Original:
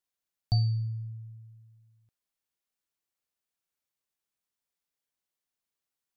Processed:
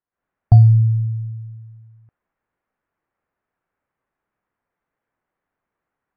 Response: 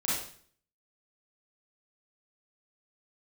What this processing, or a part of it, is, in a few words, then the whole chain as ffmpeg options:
action camera in a waterproof case: -af "lowpass=f=1800:w=0.5412,lowpass=f=1800:w=1.3066,dynaudnorm=f=110:g=3:m=4.47,volume=1.58" -ar 24000 -c:a aac -b:a 64k

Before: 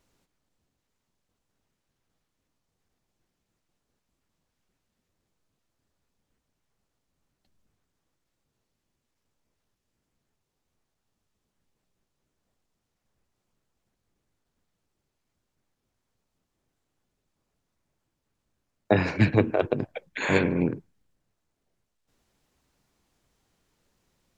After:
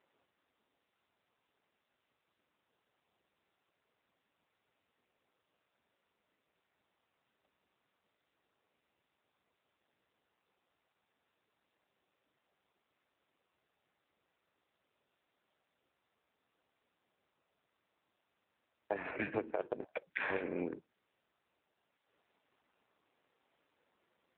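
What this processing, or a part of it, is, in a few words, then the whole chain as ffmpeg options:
voicemail: -af "highpass=390,lowpass=2900,acompressor=threshold=0.02:ratio=10,volume=1.26" -ar 8000 -c:a libopencore_amrnb -b:a 7400

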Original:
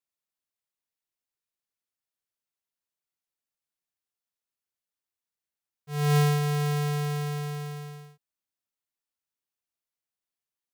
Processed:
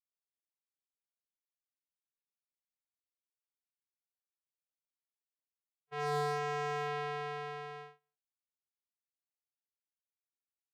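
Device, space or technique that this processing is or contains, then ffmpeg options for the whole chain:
walkie-talkie: -af "highpass=470,lowpass=2500,asoftclip=type=hard:threshold=0.0531,agate=range=0.0251:threshold=0.00501:ratio=16:detection=peak"

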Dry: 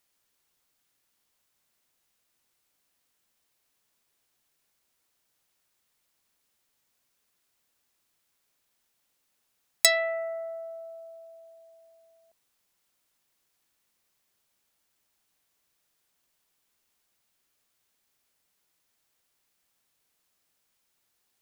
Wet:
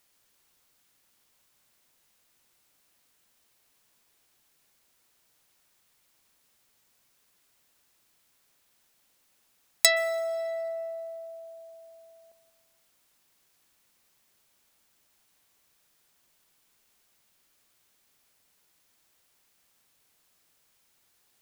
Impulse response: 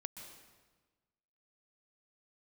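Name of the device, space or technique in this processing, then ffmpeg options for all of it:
ducked reverb: -filter_complex "[0:a]asplit=3[s0][s1][s2];[1:a]atrim=start_sample=2205[s3];[s1][s3]afir=irnorm=-1:irlink=0[s4];[s2]apad=whole_len=944464[s5];[s4][s5]sidechaincompress=threshold=0.0158:ratio=10:attack=16:release=468,volume=2.11[s6];[s0][s6]amix=inputs=2:normalize=0,volume=0.891"

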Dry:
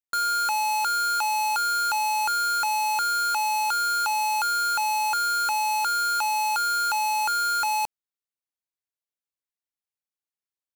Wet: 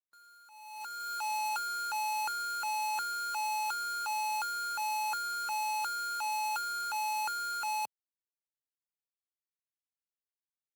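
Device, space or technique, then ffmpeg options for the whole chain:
video call: -af "highpass=f=110:w=0.5412,highpass=f=110:w=1.3066,dynaudnorm=f=220:g=7:m=1.5,agate=range=0.0501:threshold=0.0891:ratio=16:detection=peak,volume=0.422" -ar 48000 -c:a libopus -b:a 24k

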